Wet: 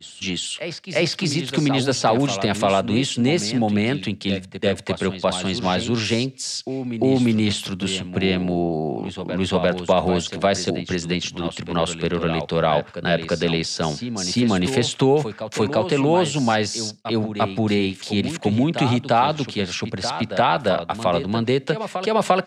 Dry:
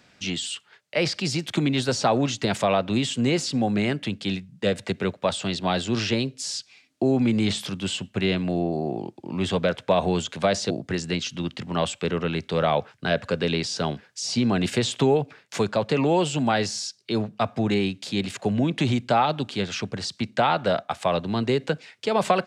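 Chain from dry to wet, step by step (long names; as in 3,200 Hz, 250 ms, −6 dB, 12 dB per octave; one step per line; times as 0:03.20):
backwards echo 348 ms −9.5 dB
downward expander −36 dBFS
level +3 dB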